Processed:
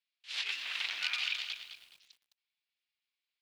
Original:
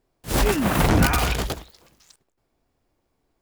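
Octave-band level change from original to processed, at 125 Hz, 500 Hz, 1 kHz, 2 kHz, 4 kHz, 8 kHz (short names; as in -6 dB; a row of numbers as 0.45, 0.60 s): under -40 dB, under -35 dB, -26.0 dB, -9.0 dB, -3.5 dB, -20.0 dB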